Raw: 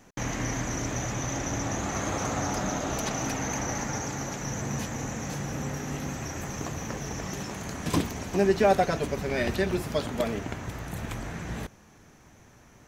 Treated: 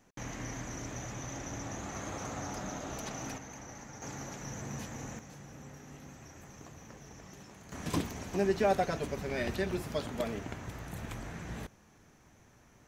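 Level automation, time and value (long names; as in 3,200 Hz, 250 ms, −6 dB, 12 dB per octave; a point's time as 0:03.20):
−10 dB
from 0:03.38 −16.5 dB
from 0:04.02 −9 dB
from 0:05.19 −16.5 dB
from 0:07.72 −6.5 dB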